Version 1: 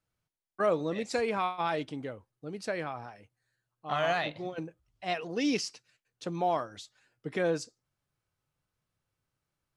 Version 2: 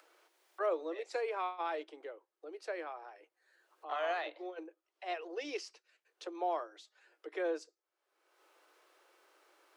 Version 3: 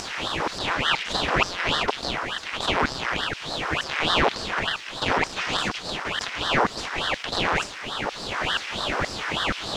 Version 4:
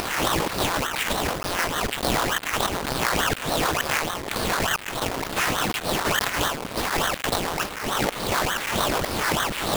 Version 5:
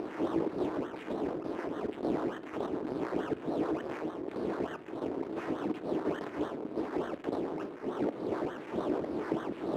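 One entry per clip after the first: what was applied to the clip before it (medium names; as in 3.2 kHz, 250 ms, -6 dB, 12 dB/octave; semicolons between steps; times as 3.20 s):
steep high-pass 320 Hz 96 dB/octave; treble shelf 4.2 kHz -11 dB; upward compressor, threshold -39 dBFS; trim -5.5 dB
spectral levelling over time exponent 0.2; LFO high-pass saw down 2.1 Hz 680–3300 Hz; ring modulator with a swept carrier 1.3 kHz, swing 90%, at 3.4 Hz; trim +8.5 dB
square wave that keeps the level; compressor with a negative ratio -24 dBFS, ratio -1; small samples zeroed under -28.5 dBFS
band-pass filter 340 Hz, Q 2.5; reverberation RT60 0.60 s, pre-delay 3 ms, DRR 12.5 dB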